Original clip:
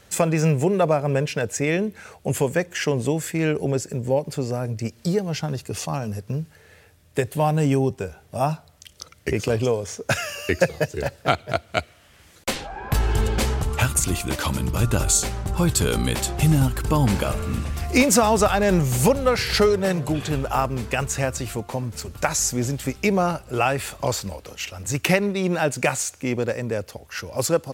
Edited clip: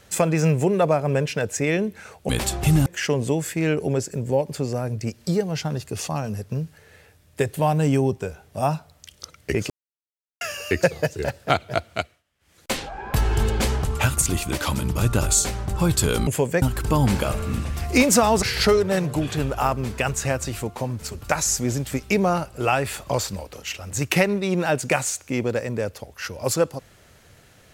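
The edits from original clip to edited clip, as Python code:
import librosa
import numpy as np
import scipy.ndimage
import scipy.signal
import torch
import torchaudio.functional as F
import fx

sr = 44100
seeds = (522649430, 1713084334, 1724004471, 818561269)

y = fx.edit(x, sr, fx.swap(start_s=2.29, length_s=0.35, other_s=16.05, other_length_s=0.57),
    fx.silence(start_s=9.48, length_s=0.71),
    fx.fade_down_up(start_s=11.67, length_s=0.84, db=-22.5, fade_s=0.34),
    fx.cut(start_s=18.42, length_s=0.93), tone=tone)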